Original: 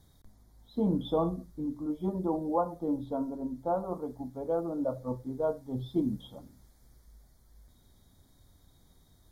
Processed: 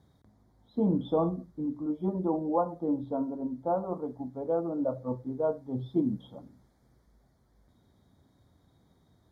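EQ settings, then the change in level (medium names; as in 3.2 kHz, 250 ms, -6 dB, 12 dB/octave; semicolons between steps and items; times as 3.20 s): high-pass 99 Hz 12 dB/octave; low-pass 1.5 kHz 6 dB/octave; +2.0 dB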